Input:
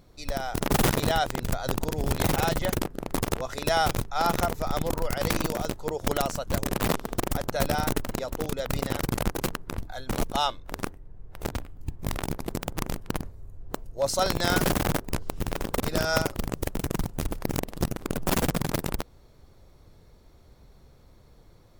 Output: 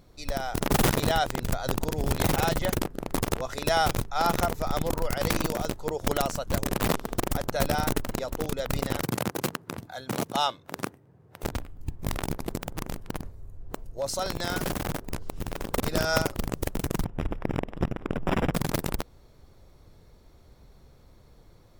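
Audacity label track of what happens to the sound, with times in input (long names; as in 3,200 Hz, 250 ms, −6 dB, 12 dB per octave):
9.030000	11.430000	high-pass filter 110 Hz 24 dB per octave
12.550000	15.710000	downward compressor 2 to 1, threshold −29 dBFS
17.040000	18.540000	Savitzky-Golay smoothing over 25 samples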